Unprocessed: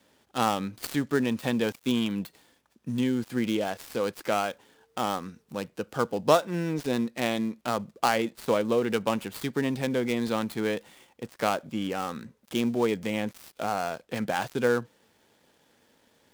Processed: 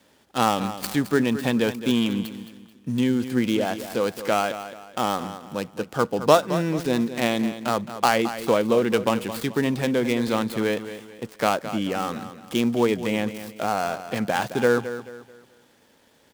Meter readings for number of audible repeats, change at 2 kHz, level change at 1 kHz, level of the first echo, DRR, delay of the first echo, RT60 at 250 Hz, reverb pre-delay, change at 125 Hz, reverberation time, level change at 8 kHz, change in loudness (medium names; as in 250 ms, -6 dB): 3, +5.0 dB, +5.0 dB, -12.0 dB, no reverb, 217 ms, no reverb, no reverb, +5.0 dB, no reverb, +5.0 dB, +5.0 dB